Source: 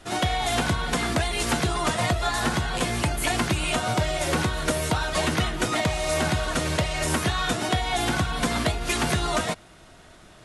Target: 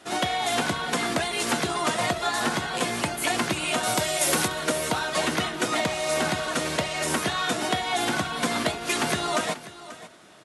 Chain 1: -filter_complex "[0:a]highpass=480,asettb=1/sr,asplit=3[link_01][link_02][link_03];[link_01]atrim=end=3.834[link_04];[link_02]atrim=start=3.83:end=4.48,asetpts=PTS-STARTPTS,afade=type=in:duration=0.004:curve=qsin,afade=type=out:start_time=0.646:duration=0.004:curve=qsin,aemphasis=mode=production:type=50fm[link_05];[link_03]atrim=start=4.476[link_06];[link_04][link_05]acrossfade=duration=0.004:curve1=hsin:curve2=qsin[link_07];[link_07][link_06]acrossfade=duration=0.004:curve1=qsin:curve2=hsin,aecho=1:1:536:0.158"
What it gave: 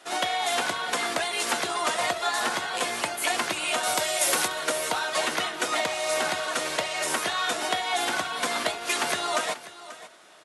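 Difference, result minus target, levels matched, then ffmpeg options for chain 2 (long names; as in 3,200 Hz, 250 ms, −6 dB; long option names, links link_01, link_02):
250 Hz band −8.0 dB
-filter_complex "[0:a]highpass=200,asettb=1/sr,asplit=3[link_01][link_02][link_03];[link_01]atrim=end=3.834[link_04];[link_02]atrim=start=3.83:end=4.48,asetpts=PTS-STARTPTS,afade=type=in:duration=0.004:curve=qsin,afade=type=out:start_time=0.646:duration=0.004:curve=qsin,aemphasis=mode=production:type=50fm[link_05];[link_03]atrim=start=4.476[link_06];[link_04][link_05]acrossfade=duration=0.004:curve1=hsin:curve2=qsin[link_07];[link_07][link_06]acrossfade=duration=0.004:curve1=qsin:curve2=hsin,aecho=1:1:536:0.158"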